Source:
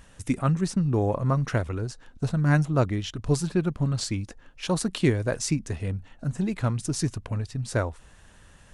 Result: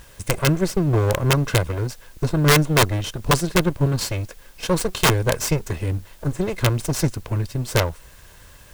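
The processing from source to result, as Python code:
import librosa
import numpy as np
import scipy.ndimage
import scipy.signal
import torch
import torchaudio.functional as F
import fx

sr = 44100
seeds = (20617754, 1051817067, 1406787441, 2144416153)

y = fx.lower_of_two(x, sr, delay_ms=1.9)
y = fx.quant_dither(y, sr, seeds[0], bits=10, dither='triangular')
y = (np.mod(10.0 ** (15.5 / 20.0) * y + 1.0, 2.0) - 1.0) / 10.0 ** (15.5 / 20.0)
y = y * librosa.db_to_amplitude(6.5)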